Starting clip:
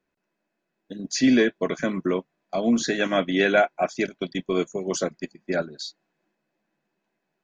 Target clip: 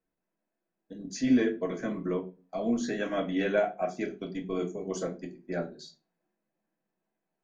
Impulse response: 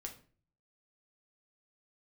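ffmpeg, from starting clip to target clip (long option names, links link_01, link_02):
-filter_complex "[0:a]equalizer=frequency=3600:width=0.63:gain=-6.5[link_01];[1:a]atrim=start_sample=2205,asetrate=66150,aresample=44100[link_02];[link_01][link_02]afir=irnorm=-1:irlink=0"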